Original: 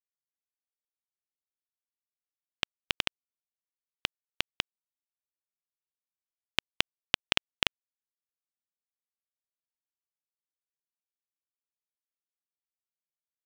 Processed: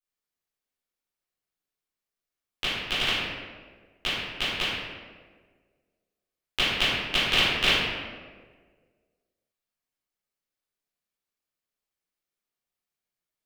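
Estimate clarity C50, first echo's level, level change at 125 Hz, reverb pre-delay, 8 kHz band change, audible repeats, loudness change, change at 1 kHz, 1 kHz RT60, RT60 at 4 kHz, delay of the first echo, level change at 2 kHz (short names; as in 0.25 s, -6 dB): -3.0 dB, none, +9.5 dB, 10 ms, +5.0 dB, none, +7.0 dB, +8.0 dB, 1.3 s, 0.90 s, none, +8.0 dB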